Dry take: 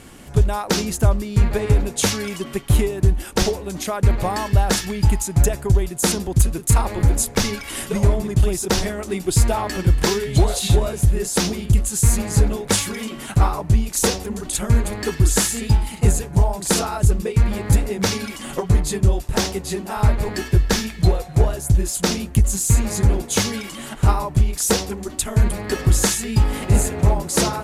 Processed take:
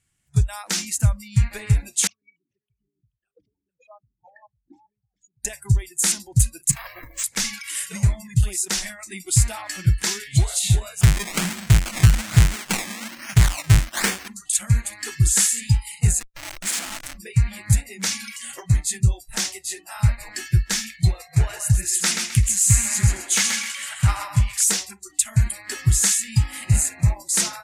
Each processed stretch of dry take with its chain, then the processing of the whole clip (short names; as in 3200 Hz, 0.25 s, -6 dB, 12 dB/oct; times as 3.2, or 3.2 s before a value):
2.07–5.45 formant sharpening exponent 3 + echo 0.432 s -12.5 dB + vowel sequencer 6.8 Hz
6.71–7.24 minimum comb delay 1.8 ms + compressor 5:1, threshold -17 dBFS + careless resampling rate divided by 3×, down filtered, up hold
11.01–14.28 half-waves squared off + decimation with a swept rate 21× 1.2 Hz
16.2–17.14 HPF 120 Hz + notches 50/100/150/200/250/300/350 Hz + Schmitt trigger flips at -23.5 dBFS
21.2–24.64 bell 1700 Hz +6 dB 2.2 oct + overloaded stage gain 6.5 dB + thinning echo 0.13 s, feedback 32%, high-pass 230 Hz, level -5 dB
whole clip: spectral noise reduction 26 dB; graphic EQ 125/250/500/1000/2000/8000 Hz +9/-10/-11/-5/+5/+10 dB; gain -5 dB